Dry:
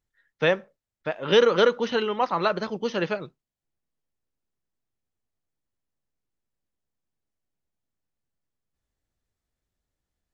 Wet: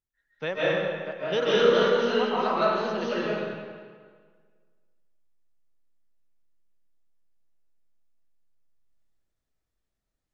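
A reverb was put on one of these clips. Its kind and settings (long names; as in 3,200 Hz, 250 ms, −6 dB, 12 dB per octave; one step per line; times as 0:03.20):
comb and all-pass reverb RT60 1.7 s, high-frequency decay 0.8×, pre-delay 110 ms, DRR −9 dB
level −10 dB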